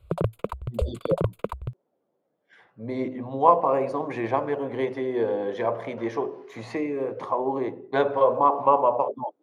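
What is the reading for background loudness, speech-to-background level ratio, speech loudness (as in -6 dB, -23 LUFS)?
-31.0 LUFS, 5.5 dB, -25.5 LUFS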